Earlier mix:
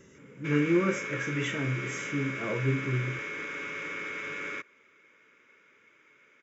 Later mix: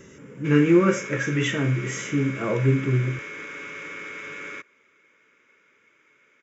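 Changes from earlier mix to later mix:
speech +8.0 dB; background: remove LPF 7000 Hz

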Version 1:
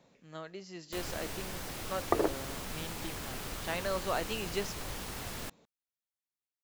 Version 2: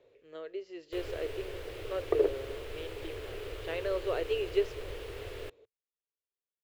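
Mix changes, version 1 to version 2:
second sound -4.0 dB; master: add EQ curve 110 Hz 0 dB, 190 Hz -26 dB, 430 Hz +12 dB, 790 Hz -9 dB, 2900 Hz -1 dB, 5900 Hz -15 dB

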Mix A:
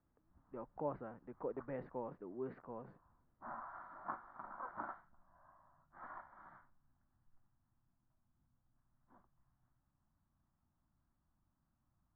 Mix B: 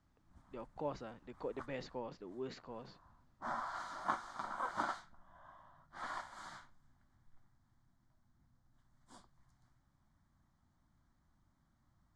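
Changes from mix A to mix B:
background +7.0 dB; master: remove LPF 1600 Hz 24 dB/oct

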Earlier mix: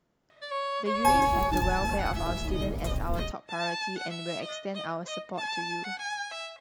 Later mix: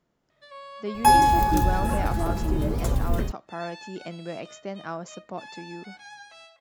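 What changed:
first sound -10.5 dB; second sound +7.0 dB

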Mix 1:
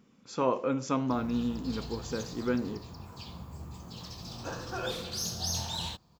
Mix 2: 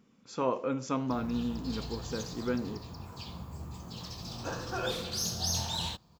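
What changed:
speech -6.0 dB; reverb: on

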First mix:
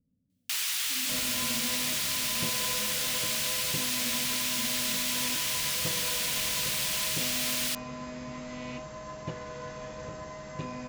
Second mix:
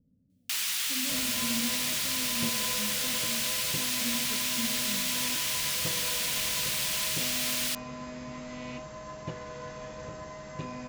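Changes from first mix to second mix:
speech +7.5 dB; second sound: send -7.0 dB

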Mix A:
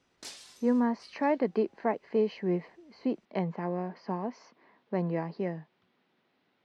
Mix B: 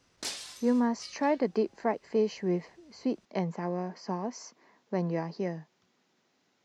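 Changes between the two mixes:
speech: remove LPF 3800 Hz 24 dB/oct; background +8.0 dB

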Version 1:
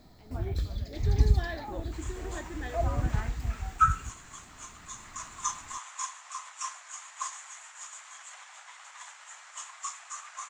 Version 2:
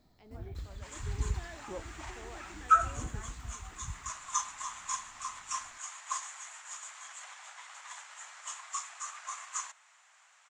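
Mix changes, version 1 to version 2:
first sound -11.0 dB; second sound: entry -1.10 s

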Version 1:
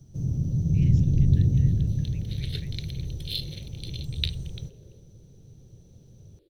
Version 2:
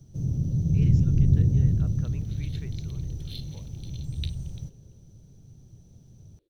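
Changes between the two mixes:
speech: remove brick-wall FIR high-pass 1600 Hz; second sound -11.0 dB

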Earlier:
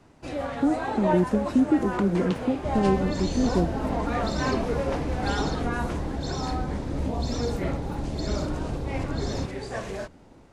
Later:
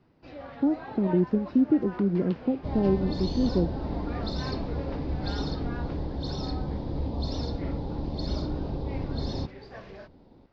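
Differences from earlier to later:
first sound -10.5 dB; master: add elliptic low-pass 5000 Hz, stop band 70 dB

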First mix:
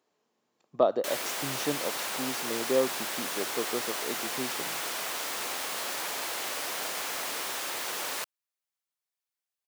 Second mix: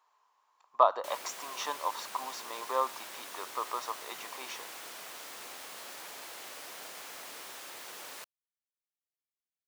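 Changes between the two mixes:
speech: add resonant high-pass 1000 Hz, resonance Q 6.4; background -11.5 dB

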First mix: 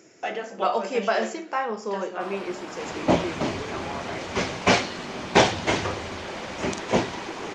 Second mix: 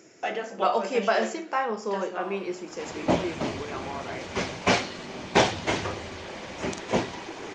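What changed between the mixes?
first sound -11.0 dB; second sound -3.0 dB

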